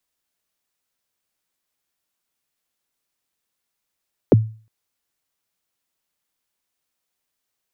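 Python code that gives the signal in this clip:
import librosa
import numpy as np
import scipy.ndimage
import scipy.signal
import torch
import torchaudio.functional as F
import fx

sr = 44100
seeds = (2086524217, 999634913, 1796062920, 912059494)

y = fx.drum_kick(sr, seeds[0], length_s=0.36, level_db=-5.0, start_hz=580.0, end_hz=110.0, sweep_ms=24.0, decay_s=0.39, click=False)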